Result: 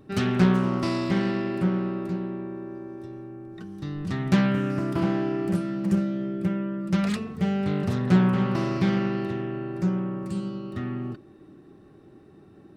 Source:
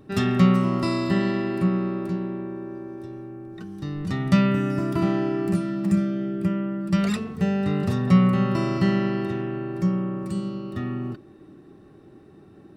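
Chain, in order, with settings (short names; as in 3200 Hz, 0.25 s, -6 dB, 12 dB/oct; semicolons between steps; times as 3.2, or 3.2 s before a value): Doppler distortion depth 0.5 ms; gain -2 dB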